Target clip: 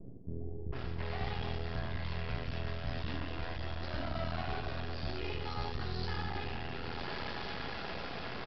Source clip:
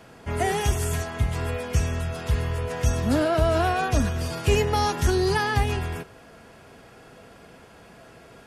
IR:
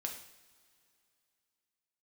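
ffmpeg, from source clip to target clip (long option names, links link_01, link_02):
-filter_complex "[1:a]atrim=start_sample=2205,asetrate=23373,aresample=44100[link_01];[0:a][link_01]afir=irnorm=-1:irlink=0,acrossover=split=92|1100[link_02][link_03][link_04];[link_02]acompressor=threshold=-31dB:ratio=4[link_05];[link_03]acompressor=threshold=-31dB:ratio=4[link_06];[link_04]acompressor=threshold=-39dB:ratio=4[link_07];[link_05][link_06][link_07]amix=inputs=3:normalize=0,aresample=11025,aeval=exprs='max(val(0),0)':channel_layout=same,aresample=44100,adynamicequalizer=threshold=0.00126:dfrequency=4300:dqfactor=1:tfrequency=4300:tqfactor=1:attack=5:release=100:ratio=0.375:range=2.5:mode=boostabove:tftype=bell,areverse,acompressor=threshold=-39dB:ratio=16,areverse,acrossover=split=400[link_08][link_09];[link_09]adelay=720[link_10];[link_08][link_10]amix=inputs=2:normalize=0,volume=8dB"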